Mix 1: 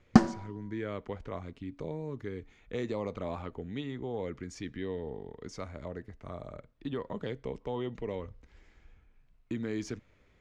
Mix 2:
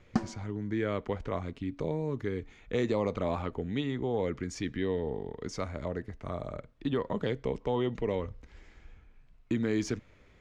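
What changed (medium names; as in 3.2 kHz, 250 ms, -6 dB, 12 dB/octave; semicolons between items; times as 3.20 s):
speech +5.5 dB; background -10.0 dB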